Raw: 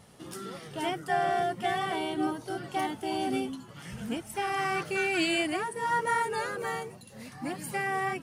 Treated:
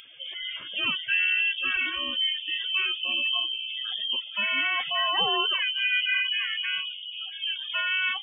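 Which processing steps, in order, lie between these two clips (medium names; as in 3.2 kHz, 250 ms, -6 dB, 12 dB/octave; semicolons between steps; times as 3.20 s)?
in parallel at -0.5 dB: peak limiter -27.5 dBFS, peak gain reduction 10 dB; 5.88–7.75 s: on the sum: distance through air 280 m; bucket-brigade echo 481 ms, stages 2048, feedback 31%, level -6.5 dB; frequency inversion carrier 3.4 kHz; bass shelf 120 Hz -6 dB; spectral gate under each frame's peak -20 dB strong; 1.86–2.45 s: band-stop 2.6 kHz, Q 5.2; on a send at -13.5 dB: reverberation, pre-delay 3 ms; on the sum: upward compressor, threshold -49 dBFS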